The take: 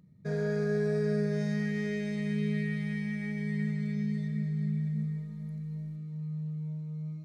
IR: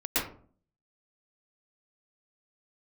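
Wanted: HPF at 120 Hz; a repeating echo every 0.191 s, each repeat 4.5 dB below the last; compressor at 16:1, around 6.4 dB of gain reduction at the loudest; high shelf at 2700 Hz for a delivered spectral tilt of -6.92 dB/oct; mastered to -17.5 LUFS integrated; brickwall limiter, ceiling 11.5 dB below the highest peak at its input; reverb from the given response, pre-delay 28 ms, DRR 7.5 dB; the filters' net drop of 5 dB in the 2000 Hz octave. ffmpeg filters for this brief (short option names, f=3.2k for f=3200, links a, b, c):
-filter_complex "[0:a]highpass=120,equalizer=f=2k:t=o:g=-7.5,highshelf=f=2.7k:g=5,acompressor=threshold=-33dB:ratio=16,alimiter=level_in=14.5dB:limit=-24dB:level=0:latency=1,volume=-14.5dB,aecho=1:1:191|382|573|764|955|1146|1337|1528|1719:0.596|0.357|0.214|0.129|0.0772|0.0463|0.0278|0.0167|0.01,asplit=2[a][b];[1:a]atrim=start_sample=2205,adelay=28[c];[b][c]afir=irnorm=-1:irlink=0,volume=-17.5dB[d];[a][d]amix=inputs=2:normalize=0,volume=28dB"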